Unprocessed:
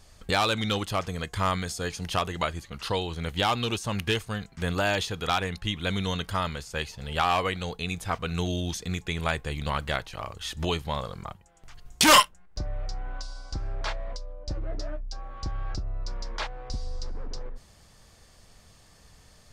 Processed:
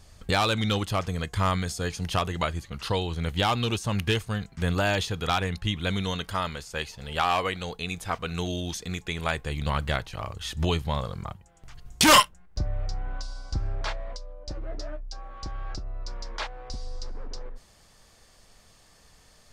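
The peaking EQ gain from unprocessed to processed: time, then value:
peaking EQ 91 Hz 2.5 oct
5.75 s +4.5 dB
6.22 s -3 dB
9.21 s -3 dB
9.79 s +6 dB
13.68 s +6 dB
14.17 s -6 dB

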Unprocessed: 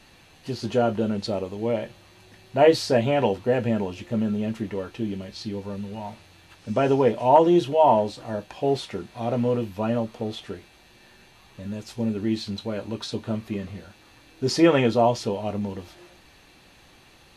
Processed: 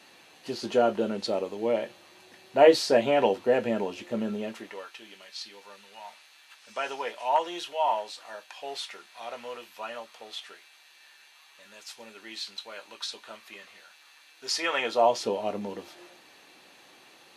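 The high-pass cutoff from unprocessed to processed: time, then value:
4.35 s 300 Hz
4.90 s 1.2 kHz
14.67 s 1.2 kHz
15.27 s 310 Hz

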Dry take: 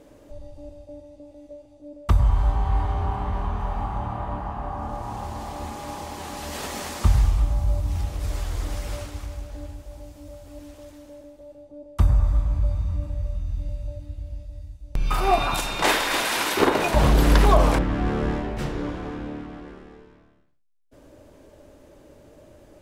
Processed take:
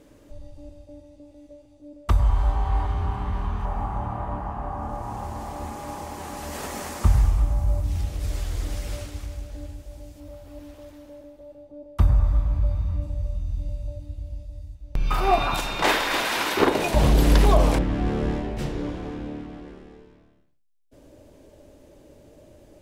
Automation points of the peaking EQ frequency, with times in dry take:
peaking EQ -6 dB 1.2 oct
670 Hz
from 2.08 s 140 Hz
from 2.87 s 630 Hz
from 3.65 s 3.7 kHz
from 7.84 s 1 kHz
from 10.20 s 7.8 kHz
from 13.02 s 1.6 kHz
from 14.75 s 9.5 kHz
from 16.68 s 1.3 kHz

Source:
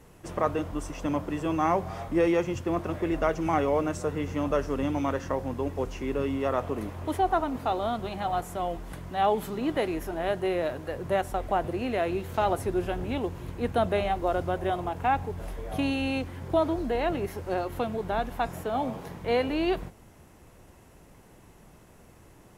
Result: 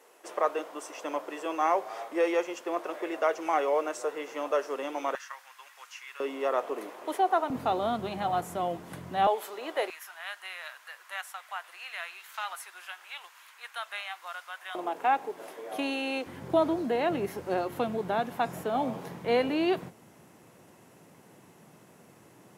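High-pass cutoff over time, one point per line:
high-pass 24 dB/octave
410 Hz
from 5.15 s 1.3 kHz
from 6.20 s 360 Hz
from 7.50 s 110 Hz
from 9.27 s 470 Hz
from 9.90 s 1.2 kHz
from 14.75 s 310 Hz
from 16.26 s 130 Hz

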